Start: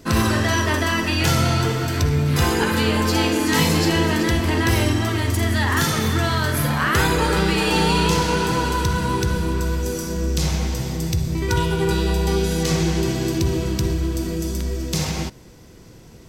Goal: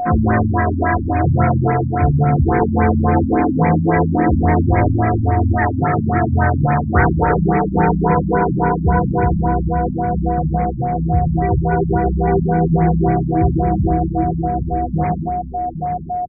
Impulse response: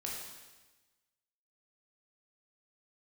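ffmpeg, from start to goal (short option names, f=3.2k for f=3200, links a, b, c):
-filter_complex "[0:a]aeval=exprs='val(0)+0.0708*sin(2*PI*720*n/s)':c=same,asplit=2[a][b];[b]adelay=816.3,volume=-8dB,highshelf=f=4k:g=-18.4[c];[a][c]amix=inputs=2:normalize=0,asplit=2[d][e];[1:a]atrim=start_sample=2205,adelay=25[f];[e][f]afir=irnorm=-1:irlink=0,volume=-12dB[g];[d][g]amix=inputs=2:normalize=0,afftfilt=real='re*lt(b*sr/1024,270*pow(2500/270,0.5+0.5*sin(2*PI*3.6*pts/sr)))':imag='im*lt(b*sr/1024,270*pow(2500/270,0.5+0.5*sin(2*PI*3.6*pts/sr)))':win_size=1024:overlap=0.75,volume=4.5dB"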